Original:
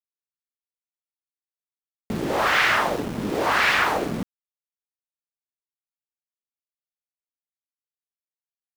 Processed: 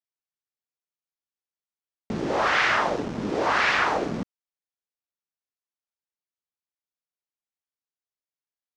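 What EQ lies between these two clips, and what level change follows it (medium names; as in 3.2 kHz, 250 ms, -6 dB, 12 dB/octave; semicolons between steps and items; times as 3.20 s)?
resonant low-pass 6.1 kHz, resonance Q 1.8; bass shelf 200 Hz -4 dB; treble shelf 2.7 kHz -9.5 dB; 0.0 dB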